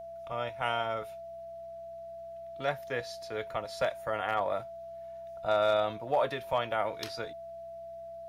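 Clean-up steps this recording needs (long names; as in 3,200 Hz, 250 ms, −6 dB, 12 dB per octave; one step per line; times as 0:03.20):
clipped peaks rebuilt −18.5 dBFS
hum removal 63.5 Hz, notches 3
notch filter 670 Hz, Q 30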